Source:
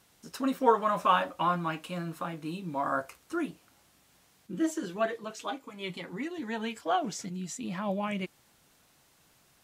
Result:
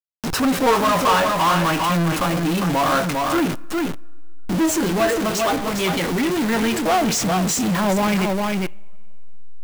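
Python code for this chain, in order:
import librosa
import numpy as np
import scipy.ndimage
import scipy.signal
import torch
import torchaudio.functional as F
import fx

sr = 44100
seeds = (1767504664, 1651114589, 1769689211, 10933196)

p1 = fx.delta_hold(x, sr, step_db=-44.5)
p2 = p1 + fx.echo_single(p1, sr, ms=404, db=-8.5, dry=0)
p3 = fx.rev_double_slope(p2, sr, seeds[0], early_s=0.48, late_s=2.5, knee_db=-18, drr_db=18.5)
y = fx.power_curve(p3, sr, exponent=0.35)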